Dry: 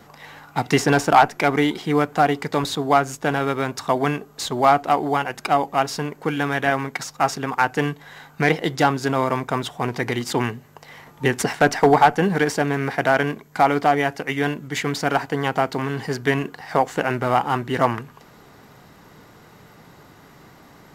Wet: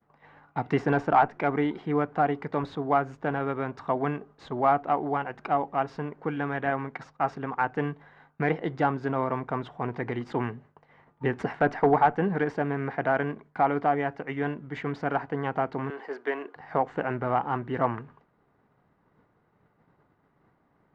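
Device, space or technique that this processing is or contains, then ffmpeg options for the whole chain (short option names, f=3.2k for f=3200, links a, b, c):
hearing-loss simulation: -filter_complex "[0:a]lowpass=1.7k,agate=range=-33dB:threshold=-39dB:ratio=3:detection=peak,asettb=1/sr,asplit=3[a][b][c];[a]atrim=end=15.904[d];[b]atrim=start=15.9:end=16.56,asetpts=PTS-STARTPTS,afade=t=in:d=0.004:c=qsin,afade=t=out:st=0.656:d=0.004:c=qsin,highpass=f=350:w=0.5412,highpass=f=350:w=1.3066[e];[c]atrim=start=16.556[f];[d][e]acrossfade=d=0.004:c1=hsin:c2=qsin[g];[g][f]acrossfade=d=0.004:c1=qsin:c2=hsin,volume=-6.5dB"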